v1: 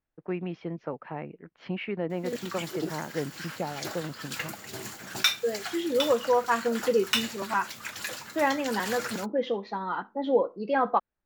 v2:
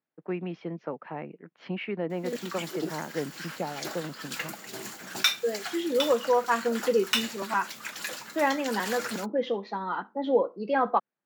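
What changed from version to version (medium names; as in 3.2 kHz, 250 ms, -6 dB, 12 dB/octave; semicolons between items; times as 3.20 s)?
master: add high-pass 150 Hz 24 dB/octave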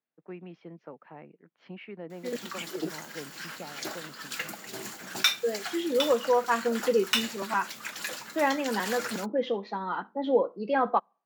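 first voice -10.0 dB; reverb: on, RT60 0.50 s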